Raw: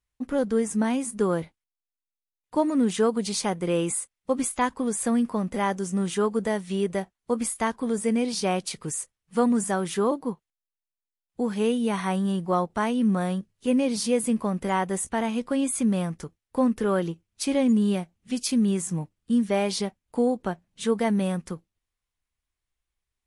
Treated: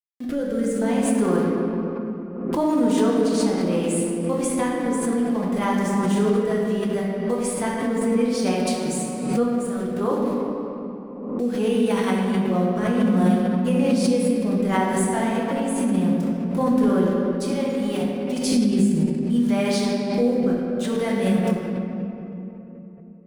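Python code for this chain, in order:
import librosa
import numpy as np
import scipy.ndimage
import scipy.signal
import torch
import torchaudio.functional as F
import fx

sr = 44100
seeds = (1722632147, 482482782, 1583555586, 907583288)

y = fx.level_steps(x, sr, step_db=16, at=(9.43, 10.01))
y = fx.highpass(y, sr, hz=360.0, slope=12, at=(17.06, 18.01))
y = np.where(np.abs(y) >= 10.0 ** (-39.0 / 20.0), y, 0.0)
y = fx.rotary(y, sr, hz=0.65)
y = fx.room_shoebox(y, sr, seeds[0], volume_m3=190.0, walls='hard', distance_m=0.8)
y = fx.pre_swell(y, sr, db_per_s=51.0)
y = y * 10.0 ** (-1.5 / 20.0)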